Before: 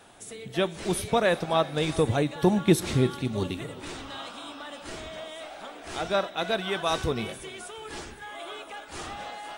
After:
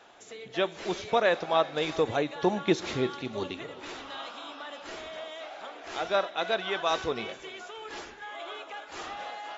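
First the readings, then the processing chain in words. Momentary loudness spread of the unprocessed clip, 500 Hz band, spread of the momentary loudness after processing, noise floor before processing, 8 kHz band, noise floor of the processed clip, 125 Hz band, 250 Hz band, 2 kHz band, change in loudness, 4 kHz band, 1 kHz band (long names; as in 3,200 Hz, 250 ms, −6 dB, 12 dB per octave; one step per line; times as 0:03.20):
16 LU, −1.5 dB, 15 LU, −45 dBFS, −8.5 dB, −48 dBFS, −12.0 dB, −6.0 dB, 0.0 dB, −3.0 dB, −1.5 dB, 0.0 dB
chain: linear-phase brick-wall low-pass 7,500 Hz
bass and treble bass −14 dB, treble −4 dB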